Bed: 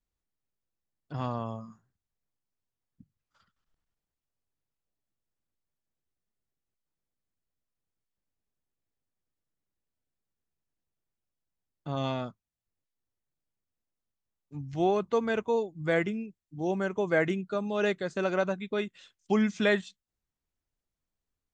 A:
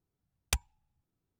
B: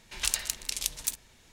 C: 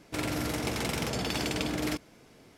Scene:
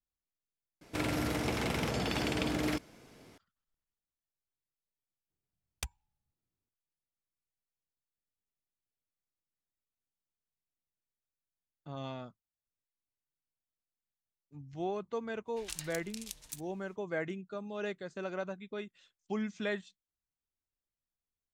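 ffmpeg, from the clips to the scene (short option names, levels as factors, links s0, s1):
-filter_complex "[0:a]volume=0.316[s0];[3:a]acrossover=split=3700[s1][s2];[s2]acompressor=threshold=0.00794:ratio=4:attack=1:release=60[s3];[s1][s3]amix=inputs=2:normalize=0[s4];[s0]asplit=2[s5][s6];[s5]atrim=end=0.814[s7];[s4]atrim=end=2.57,asetpts=PTS-STARTPTS,volume=0.891[s8];[s6]atrim=start=3.376[s9];[1:a]atrim=end=1.39,asetpts=PTS-STARTPTS,volume=0.355,afade=t=in:d=0.004:c=hsin,afade=t=out:st=1.386:d=0.004:c=hsin,adelay=5300[s10];[2:a]atrim=end=1.52,asetpts=PTS-STARTPTS,volume=0.211,afade=t=in:d=0.05,afade=t=out:st=1.47:d=0.05,adelay=15450[s11];[s7][s8]acrossfade=d=0.004:c1=hsin:c2=hsin[s12];[s12][s9]acrossfade=d=0.004:c1=hsin:c2=hsin[s13];[s13][s10][s11]amix=inputs=3:normalize=0"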